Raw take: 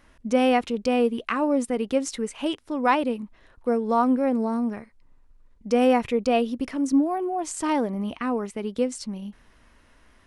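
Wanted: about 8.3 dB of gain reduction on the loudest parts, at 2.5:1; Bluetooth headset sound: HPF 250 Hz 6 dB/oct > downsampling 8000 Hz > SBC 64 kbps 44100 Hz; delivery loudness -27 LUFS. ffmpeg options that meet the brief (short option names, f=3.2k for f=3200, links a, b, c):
-af "acompressor=threshold=-28dB:ratio=2.5,highpass=f=250:p=1,aresample=8000,aresample=44100,volume=5.5dB" -ar 44100 -c:a sbc -b:a 64k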